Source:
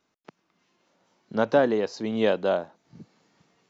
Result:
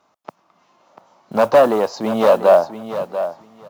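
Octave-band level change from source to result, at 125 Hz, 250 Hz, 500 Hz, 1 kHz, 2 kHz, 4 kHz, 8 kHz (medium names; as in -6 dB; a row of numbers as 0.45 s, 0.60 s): +3.5 dB, +4.5 dB, +10.5 dB, +12.5 dB, +4.5 dB, +5.0 dB, no reading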